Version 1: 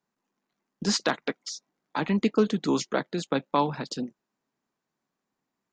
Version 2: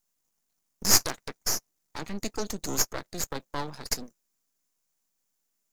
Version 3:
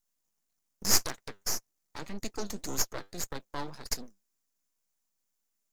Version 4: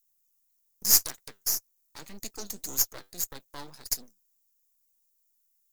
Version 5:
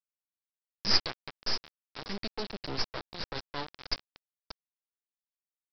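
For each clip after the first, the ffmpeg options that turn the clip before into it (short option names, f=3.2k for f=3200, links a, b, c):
-af "aexciter=amount=15.5:drive=4.2:freq=4.9k,aeval=exprs='max(val(0),0)':c=same,volume=-5.5dB"
-af "flanger=delay=0.5:depth=9.8:regen=73:speed=1.8:shape=sinusoidal"
-af "aemphasis=mode=production:type=75fm,volume=-6dB"
-af "aecho=1:1:580|1160:0.266|0.0506,aresample=11025,aeval=exprs='val(0)*gte(abs(val(0)),0.0141)':c=same,aresample=44100,volume=5dB"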